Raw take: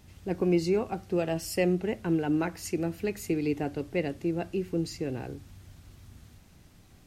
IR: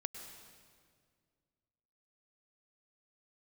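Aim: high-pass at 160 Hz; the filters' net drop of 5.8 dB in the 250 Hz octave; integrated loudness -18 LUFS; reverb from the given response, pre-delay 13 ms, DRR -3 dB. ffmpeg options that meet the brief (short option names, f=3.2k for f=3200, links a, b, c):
-filter_complex "[0:a]highpass=160,equalizer=f=250:t=o:g=-8.5,asplit=2[a][b];[1:a]atrim=start_sample=2205,adelay=13[c];[b][c]afir=irnorm=-1:irlink=0,volume=4.5dB[d];[a][d]amix=inputs=2:normalize=0,volume=11dB"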